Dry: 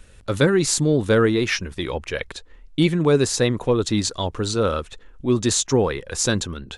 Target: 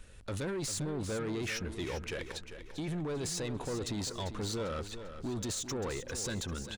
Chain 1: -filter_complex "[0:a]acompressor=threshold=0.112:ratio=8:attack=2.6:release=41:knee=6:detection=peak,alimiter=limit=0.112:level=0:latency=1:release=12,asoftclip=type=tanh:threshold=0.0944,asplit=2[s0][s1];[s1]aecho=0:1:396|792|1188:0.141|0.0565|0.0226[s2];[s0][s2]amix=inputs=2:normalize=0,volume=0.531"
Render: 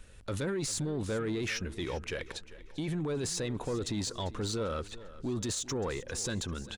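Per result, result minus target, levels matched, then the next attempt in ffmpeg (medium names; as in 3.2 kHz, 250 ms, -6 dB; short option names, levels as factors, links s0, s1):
saturation: distortion -8 dB; echo-to-direct -6.5 dB
-filter_complex "[0:a]acompressor=threshold=0.112:ratio=8:attack=2.6:release=41:knee=6:detection=peak,alimiter=limit=0.112:level=0:latency=1:release=12,asoftclip=type=tanh:threshold=0.0473,asplit=2[s0][s1];[s1]aecho=0:1:396|792|1188:0.141|0.0565|0.0226[s2];[s0][s2]amix=inputs=2:normalize=0,volume=0.531"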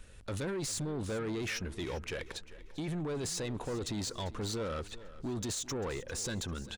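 echo-to-direct -6.5 dB
-filter_complex "[0:a]acompressor=threshold=0.112:ratio=8:attack=2.6:release=41:knee=6:detection=peak,alimiter=limit=0.112:level=0:latency=1:release=12,asoftclip=type=tanh:threshold=0.0473,asplit=2[s0][s1];[s1]aecho=0:1:396|792|1188|1584:0.299|0.119|0.0478|0.0191[s2];[s0][s2]amix=inputs=2:normalize=0,volume=0.531"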